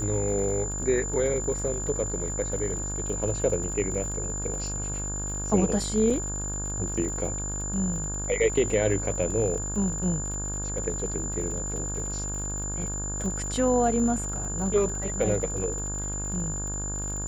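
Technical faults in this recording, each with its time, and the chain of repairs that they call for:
mains buzz 50 Hz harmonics 35 −34 dBFS
surface crackle 50 per second −35 dBFS
whistle 7,100 Hz −32 dBFS
0:06.10: drop-out 4.1 ms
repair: click removal
hum removal 50 Hz, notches 35
notch filter 7,100 Hz, Q 30
repair the gap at 0:06.10, 4.1 ms

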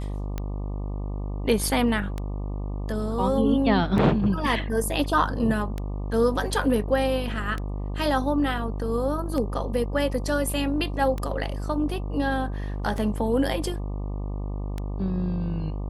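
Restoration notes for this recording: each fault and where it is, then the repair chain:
mains buzz 50 Hz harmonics 24 −30 dBFS
scratch tick 33 1/3 rpm −17 dBFS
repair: click removal
hum removal 50 Hz, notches 24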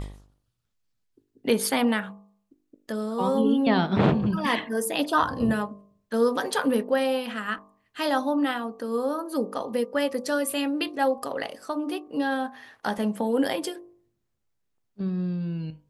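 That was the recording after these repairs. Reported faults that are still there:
none of them is left

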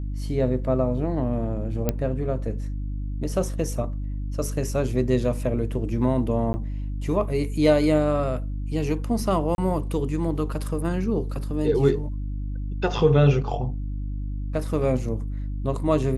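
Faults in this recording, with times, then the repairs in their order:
mains hum 50 Hz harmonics 6 −29 dBFS
0:01.89: click −9 dBFS
0:06.53–0:06.54: drop-out 10 ms
0:09.55–0:09.58: drop-out 31 ms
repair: click removal
hum removal 50 Hz, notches 6
repair the gap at 0:06.53, 10 ms
repair the gap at 0:09.55, 31 ms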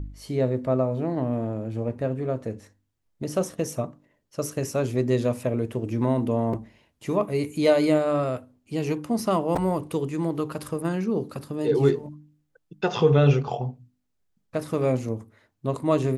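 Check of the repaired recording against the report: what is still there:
none of them is left

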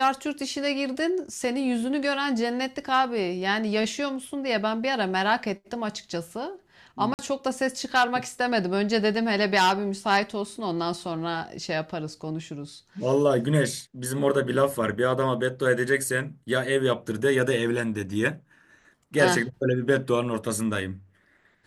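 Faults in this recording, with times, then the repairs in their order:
0:07.14–0:07.19: drop-out 49 ms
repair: repair the gap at 0:07.14, 49 ms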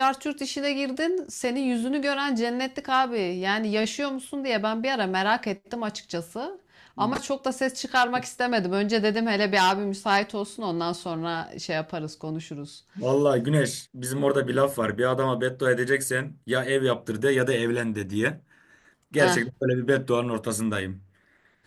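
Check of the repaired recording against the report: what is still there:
none of them is left

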